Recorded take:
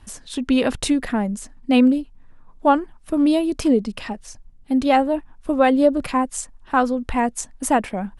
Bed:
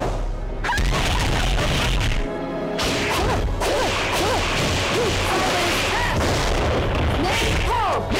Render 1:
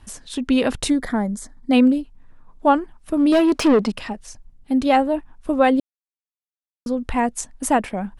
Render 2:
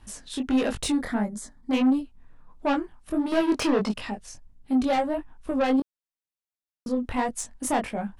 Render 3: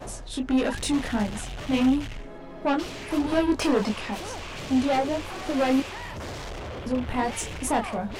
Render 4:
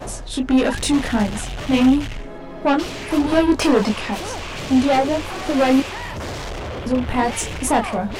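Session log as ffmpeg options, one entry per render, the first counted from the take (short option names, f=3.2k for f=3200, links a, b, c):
-filter_complex "[0:a]asettb=1/sr,asplit=3[a][b][c];[a]atrim=end=0.894[d];[b]atrim=start=0.89:end=1.73,asetpts=PTS-STARTPTS,afade=t=in:d=0.004:c=qsin,afade=t=out:st=0.836:d=0.004:c=qsin,asuperstop=centerf=2700:order=4:qfactor=2.6[e];[c]atrim=start=1.726[f];[d][e]acrossfade=d=0.004:c1=hsin:c2=qsin[g];[g][f]acrossfade=d=0.004:c1=qsin:c2=hsin,asettb=1/sr,asplit=3[h][i][j];[h]atrim=end=3.324[k];[i]atrim=start=3.32:end=3.92,asetpts=PTS-STARTPTS,afade=t=in:d=0.004:c=qsin,afade=t=out:st=0.596:d=0.004:c=qsin,asplit=2[l][m];[m]highpass=f=720:p=1,volume=22dB,asoftclip=type=tanh:threshold=-7.5dB[n];[l][n]amix=inputs=2:normalize=0,lowpass=f=2.2k:p=1,volume=-6dB[o];[j]atrim=start=3.916[p];[k][o]acrossfade=d=0.004:c1=hsin:c2=qsin[q];[q][p]acrossfade=d=0.004:c1=qsin:c2=hsin,asplit=3[r][s][t];[r]atrim=end=5.8,asetpts=PTS-STARTPTS,afade=t=out:st=5.796:d=0.004:c=hsin[u];[s]atrim=start=5.8:end=6.86,asetpts=PTS-STARTPTS,volume=0[v];[t]atrim=start=6.86,asetpts=PTS-STARTPTS,afade=t=in:d=0.004:c=hsin[w];[u][v][w]concat=n=3:v=0:a=1"
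-af "asoftclip=type=tanh:threshold=-15.5dB,flanger=delay=18:depth=6:speed=1.5"
-filter_complex "[1:a]volume=-15.5dB[a];[0:a][a]amix=inputs=2:normalize=0"
-af "volume=7dB"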